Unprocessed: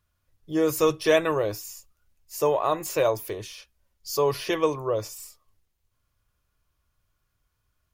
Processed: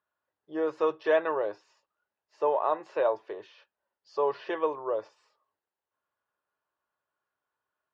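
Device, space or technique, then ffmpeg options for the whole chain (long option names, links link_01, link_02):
phone earpiece: -af "highpass=380,equalizer=frequency=400:width_type=q:width=4:gain=3,equalizer=frequency=590:width_type=q:width=4:gain=3,equalizer=frequency=880:width_type=q:width=4:gain=7,equalizer=frequency=1600:width_type=q:width=4:gain=4,equalizer=frequency=2300:width_type=q:width=4:gain=-8,equalizer=frequency=3300:width_type=q:width=4:gain=-5,lowpass=frequency=3300:width=0.5412,lowpass=frequency=3300:width=1.3066,volume=-5.5dB"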